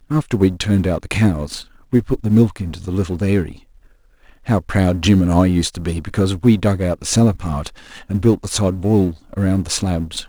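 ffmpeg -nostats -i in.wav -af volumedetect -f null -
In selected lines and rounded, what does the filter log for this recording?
mean_volume: -17.5 dB
max_volume: -1.4 dB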